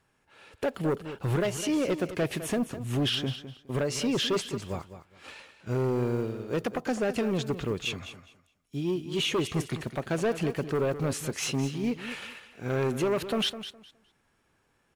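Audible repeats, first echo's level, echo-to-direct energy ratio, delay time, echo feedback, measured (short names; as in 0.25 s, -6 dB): 2, -12.0 dB, -12.0 dB, 0.207 s, 20%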